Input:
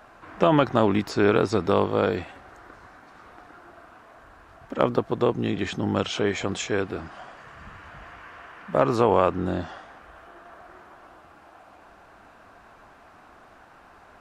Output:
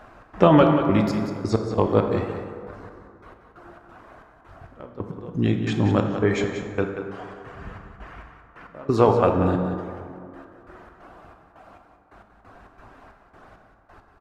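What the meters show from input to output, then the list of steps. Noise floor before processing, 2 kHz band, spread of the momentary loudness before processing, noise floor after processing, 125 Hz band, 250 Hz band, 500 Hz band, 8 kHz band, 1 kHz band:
-52 dBFS, -2.0 dB, 23 LU, -55 dBFS, +5.5 dB, +3.5 dB, +1.0 dB, -6.0 dB, +0.5 dB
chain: reverb removal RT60 0.59 s; tilt EQ -1.5 dB/octave; trance gate "xx.xxx..xx...x.." 135 bpm -24 dB; delay 184 ms -9.5 dB; plate-style reverb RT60 2.3 s, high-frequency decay 0.45×, DRR 4 dB; trim +2.5 dB

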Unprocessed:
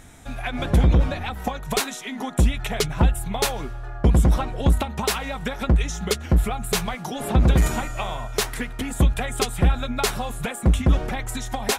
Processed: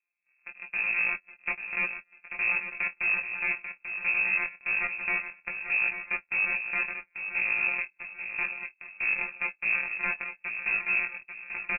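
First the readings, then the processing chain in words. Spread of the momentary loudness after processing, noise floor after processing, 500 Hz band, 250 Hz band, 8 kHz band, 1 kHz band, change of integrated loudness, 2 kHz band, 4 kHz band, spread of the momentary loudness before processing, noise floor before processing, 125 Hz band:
10 LU, -72 dBFS, -21.0 dB, -26.0 dB, under -40 dB, -13.0 dB, -5.0 dB, +6.5 dB, under -25 dB, 10 LU, -35 dBFS, under -35 dB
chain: sorted samples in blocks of 256 samples; gate -23 dBFS, range -47 dB; in parallel at -4.5 dB: hard clipper -22.5 dBFS, distortion -7 dB; on the sum: gain riding within 4 dB 0.5 s; chorus voices 4, 0.18 Hz, delay 19 ms, depth 4.8 ms; reverse; compression 6:1, threshold -27 dBFS, peak gain reduction 16.5 dB; reverse; feedback delay 840 ms, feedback 34%, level -9 dB; frequency inversion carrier 2.6 kHz; tape noise reduction on one side only encoder only

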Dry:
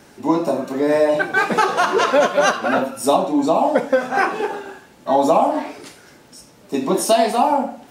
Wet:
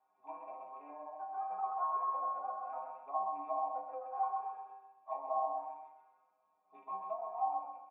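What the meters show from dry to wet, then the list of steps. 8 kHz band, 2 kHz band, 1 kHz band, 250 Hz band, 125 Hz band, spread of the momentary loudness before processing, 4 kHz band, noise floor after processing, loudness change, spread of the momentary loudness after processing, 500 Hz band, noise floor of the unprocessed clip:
under -40 dB, under -40 dB, -16.5 dB, under -40 dB, under -40 dB, 10 LU, under -40 dB, -76 dBFS, -21.0 dB, 14 LU, -28.0 dB, -48 dBFS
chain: rattle on loud lows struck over -26 dBFS, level -16 dBFS; bass shelf 90 Hz -6.5 dB; low-pass that closes with the level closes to 850 Hz, closed at -9.5 dBFS; tilt shelf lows -8.5 dB, about 930 Hz; hum notches 50/100/150/200/250/300/350/400 Hz; feedback delay 129 ms, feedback 38%, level -5 dB; low-pass that closes with the level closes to 1.5 kHz, closed at -14.5 dBFS; cascade formant filter a; inharmonic resonator 94 Hz, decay 0.44 s, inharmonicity 0.008

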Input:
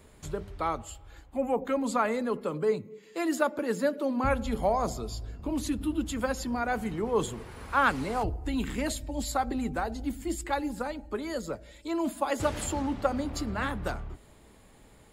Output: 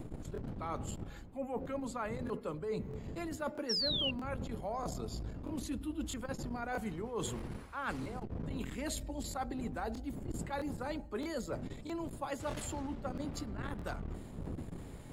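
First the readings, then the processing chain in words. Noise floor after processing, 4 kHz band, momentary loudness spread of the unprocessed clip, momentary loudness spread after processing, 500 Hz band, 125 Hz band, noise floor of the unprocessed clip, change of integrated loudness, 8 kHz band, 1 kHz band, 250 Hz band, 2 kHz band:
-48 dBFS, +2.5 dB, 10 LU, 5 LU, -10.5 dB, -3.5 dB, -56 dBFS, -8.5 dB, -7.0 dB, -11.5 dB, -8.5 dB, -11.0 dB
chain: wind noise 210 Hz -34 dBFS; reverse; compression 12:1, threshold -36 dBFS, peak gain reduction 18.5 dB; reverse; painted sound fall, 3.69–4.11 s, 2.7–5.7 kHz -35 dBFS; crackling interface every 0.64 s, samples 1024, repeat, from 0.33 s; transformer saturation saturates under 200 Hz; trim +1.5 dB

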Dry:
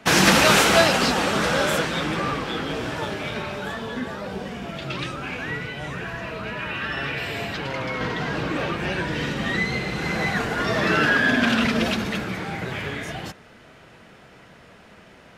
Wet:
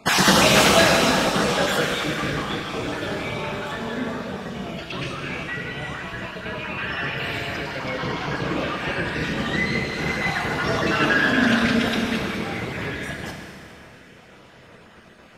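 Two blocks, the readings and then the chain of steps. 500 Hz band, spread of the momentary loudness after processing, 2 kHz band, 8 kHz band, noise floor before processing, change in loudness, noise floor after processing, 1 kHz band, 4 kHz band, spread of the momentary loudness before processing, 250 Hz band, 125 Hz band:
+1.0 dB, 15 LU, 0.0 dB, +1.0 dB, -49 dBFS, +0.5 dB, -48 dBFS, +0.5 dB, +1.0 dB, 15 LU, +1.0 dB, +0.5 dB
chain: random holes in the spectrogram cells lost 28%; Schroeder reverb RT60 2.5 s, combs from 27 ms, DRR 2 dB

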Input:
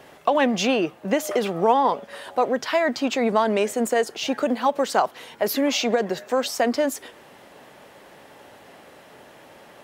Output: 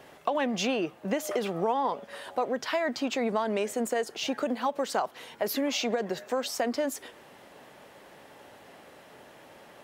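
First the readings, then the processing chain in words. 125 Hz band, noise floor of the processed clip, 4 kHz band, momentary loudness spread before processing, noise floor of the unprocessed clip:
-6.0 dB, -53 dBFS, -6.0 dB, 5 LU, -49 dBFS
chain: compression 2:1, threshold -23 dBFS, peak gain reduction 6.5 dB; trim -4 dB

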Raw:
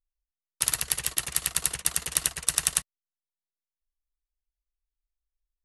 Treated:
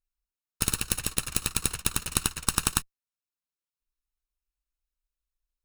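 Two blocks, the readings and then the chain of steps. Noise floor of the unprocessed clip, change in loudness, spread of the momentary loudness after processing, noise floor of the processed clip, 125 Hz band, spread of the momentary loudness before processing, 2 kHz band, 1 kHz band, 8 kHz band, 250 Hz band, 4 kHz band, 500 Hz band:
under -85 dBFS, -1.5 dB, 2 LU, under -85 dBFS, +8.5 dB, 2 LU, -0.5 dB, +4.5 dB, -3.0 dB, +11.5 dB, -0.5 dB, +4.0 dB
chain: comb filter that takes the minimum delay 0.75 ms

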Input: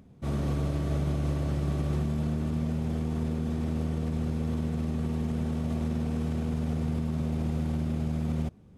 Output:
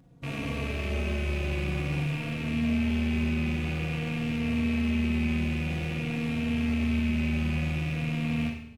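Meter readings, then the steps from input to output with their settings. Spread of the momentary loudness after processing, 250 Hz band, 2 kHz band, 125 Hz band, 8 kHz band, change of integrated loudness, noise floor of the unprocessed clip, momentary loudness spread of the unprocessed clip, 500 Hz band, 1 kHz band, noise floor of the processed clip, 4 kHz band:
4 LU, +2.5 dB, +15.0 dB, -1.0 dB, no reading, +1.5 dB, -52 dBFS, 1 LU, 0.0 dB, +0.5 dB, -38 dBFS, +10.0 dB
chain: rattle on loud lows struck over -38 dBFS, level -23 dBFS; Schroeder reverb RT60 0.7 s, combs from 30 ms, DRR 2 dB; endless flanger 3.7 ms -0.5 Hz

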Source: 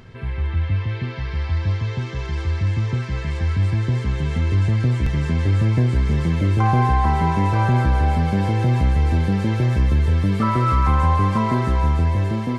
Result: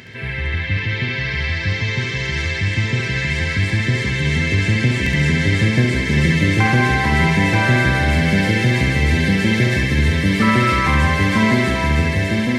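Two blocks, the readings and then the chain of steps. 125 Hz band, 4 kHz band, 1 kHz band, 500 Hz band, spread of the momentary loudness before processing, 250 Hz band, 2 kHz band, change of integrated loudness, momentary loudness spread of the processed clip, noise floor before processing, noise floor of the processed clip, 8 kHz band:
+0.5 dB, +13.5 dB, -0.5 dB, +5.0 dB, 7 LU, +5.5 dB, +14.5 dB, +3.0 dB, 6 LU, -28 dBFS, -24 dBFS, no reading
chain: high-pass 110 Hz 12 dB/octave; resonant high shelf 1.5 kHz +6.5 dB, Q 3; flutter echo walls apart 11.7 m, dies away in 0.82 s; trim +4 dB

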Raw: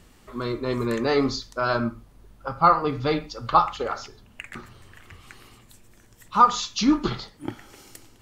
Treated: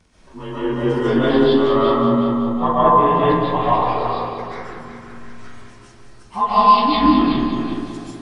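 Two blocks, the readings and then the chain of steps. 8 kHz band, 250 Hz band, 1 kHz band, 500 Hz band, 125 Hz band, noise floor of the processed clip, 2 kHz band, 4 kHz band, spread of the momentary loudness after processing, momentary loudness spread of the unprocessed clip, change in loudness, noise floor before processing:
under -10 dB, +9.5 dB, +7.0 dB, +9.5 dB, +7.0 dB, -45 dBFS, +3.5 dB, +4.5 dB, 18 LU, 20 LU, +7.0 dB, -54 dBFS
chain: frequency axis rescaled in octaves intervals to 90%; multi-head delay 186 ms, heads first and second, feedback 42%, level -9.5 dB; algorithmic reverb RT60 1.5 s, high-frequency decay 0.25×, pre-delay 100 ms, DRR -9 dB; trim -2.5 dB

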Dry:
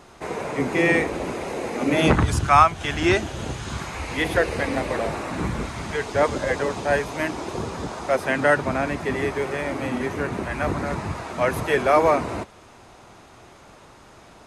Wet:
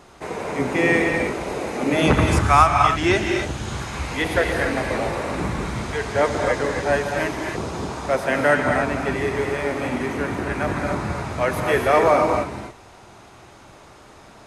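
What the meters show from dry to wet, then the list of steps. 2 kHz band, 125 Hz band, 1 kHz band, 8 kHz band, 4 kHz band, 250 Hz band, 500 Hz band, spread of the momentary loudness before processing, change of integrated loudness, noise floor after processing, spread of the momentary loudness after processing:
+2.0 dB, +2.0 dB, +2.0 dB, +2.0 dB, +1.5 dB, +1.5 dB, +2.0 dB, 13 LU, +2.0 dB, -46 dBFS, 11 LU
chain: gated-style reverb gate 300 ms rising, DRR 2.5 dB

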